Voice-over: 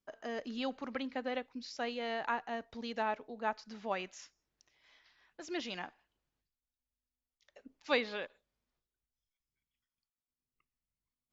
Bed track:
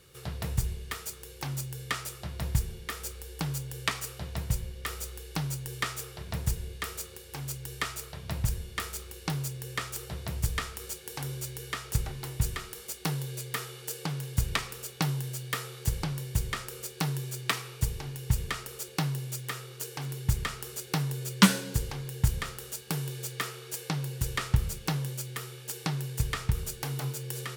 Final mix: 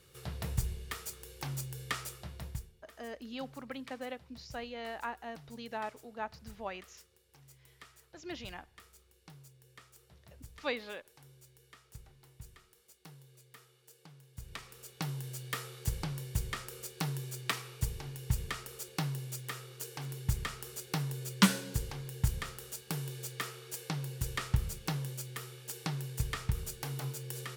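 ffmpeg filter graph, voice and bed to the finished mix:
-filter_complex "[0:a]adelay=2750,volume=-4dB[a];[1:a]volume=13.5dB,afade=t=out:st=2.04:d=0.68:silence=0.11885,afade=t=in:st=14.33:d=1.15:silence=0.133352[b];[a][b]amix=inputs=2:normalize=0"

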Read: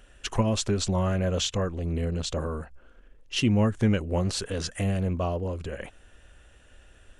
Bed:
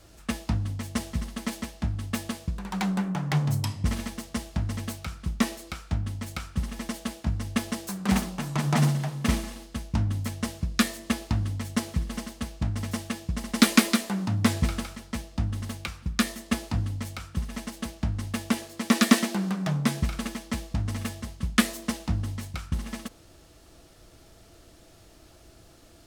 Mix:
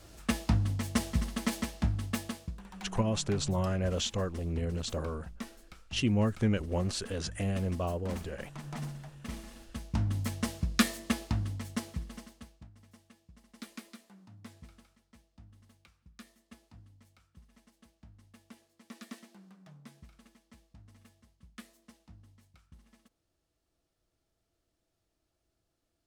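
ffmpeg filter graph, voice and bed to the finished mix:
-filter_complex "[0:a]adelay=2600,volume=-5dB[a];[1:a]volume=14.5dB,afade=t=out:st=1.76:d=0.97:silence=0.141254,afade=t=in:st=9.29:d=0.96:silence=0.188365,afade=t=out:st=10.88:d=1.81:silence=0.0562341[b];[a][b]amix=inputs=2:normalize=0"

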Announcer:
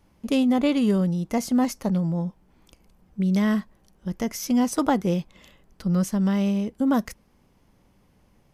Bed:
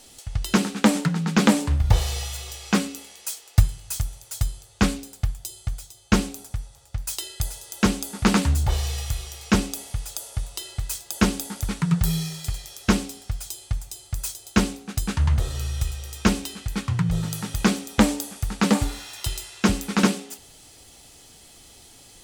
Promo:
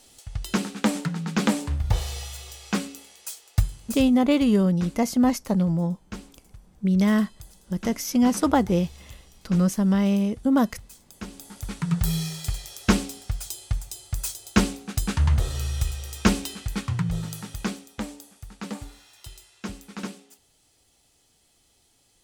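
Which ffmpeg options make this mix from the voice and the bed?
-filter_complex "[0:a]adelay=3650,volume=1.5dB[a];[1:a]volume=13dB,afade=t=out:st=3.84:d=0.46:silence=0.223872,afade=t=in:st=11.27:d=1.01:silence=0.125893,afade=t=out:st=16.48:d=1.51:silence=0.177828[b];[a][b]amix=inputs=2:normalize=0"

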